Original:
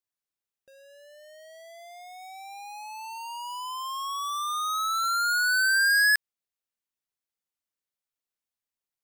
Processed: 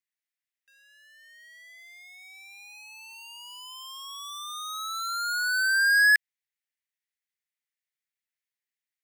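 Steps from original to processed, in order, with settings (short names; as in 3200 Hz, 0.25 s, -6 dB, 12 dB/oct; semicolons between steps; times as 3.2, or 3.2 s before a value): ladder high-pass 1700 Hz, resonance 60%; gain +7 dB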